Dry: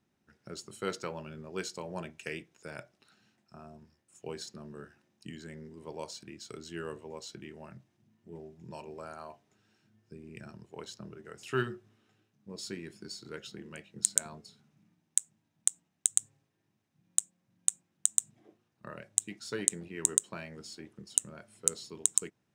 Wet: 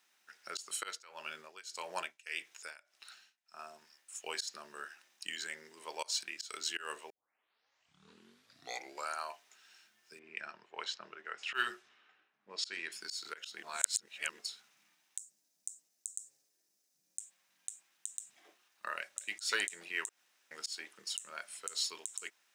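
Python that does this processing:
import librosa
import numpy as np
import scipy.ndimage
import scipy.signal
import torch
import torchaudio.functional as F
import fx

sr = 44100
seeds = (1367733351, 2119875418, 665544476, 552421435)

y = fx.tremolo(x, sr, hz=1.7, depth=0.95, at=(0.75, 3.59))
y = fx.env_lowpass(y, sr, base_hz=1600.0, full_db=-31.5, at=(10.19, 12.92))
y = fx.band_shelf(y, sr, hz=1700.0, db=-15.5, octaves=2.5, at=(15.18, 17.2))
y = fx.echo_throw(y, sr, start_s=18.95, length_s=0.42, ms=210, feedback_pct=10, wet_db=-12.5)
y = fx.edit(y, sr, fx.tape_start(start_s=7.1, length_s=2.03),
    fx.reverse_span(start_s=13.63, length_s=0.76),
    fx.room_tone_fill(start_s=20.09, length_s=0.42), tone=tone)
y = scipy.signal.sosfilt(scipy.signal.bessel(2, 1700.0, 'highpass', norm='mag', fs=sr, output='sos'), y)
y = fx.auto_swell(y, sr, attack_ms=154.0)
y = y * librosa.db_to_amplitude(13.5)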